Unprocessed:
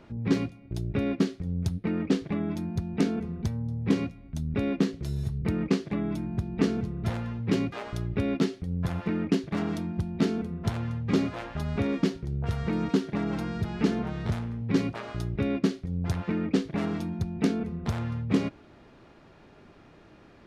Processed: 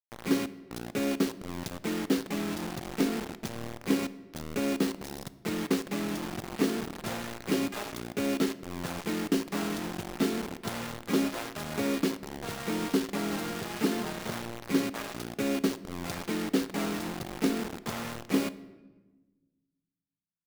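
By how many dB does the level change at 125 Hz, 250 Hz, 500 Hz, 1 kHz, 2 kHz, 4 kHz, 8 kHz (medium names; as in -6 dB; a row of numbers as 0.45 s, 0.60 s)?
-11.0 dB, -2.5 dB, -0.5 dB, +2.0 dB, +2.5 dB, +4.0 dB, +8.5 dB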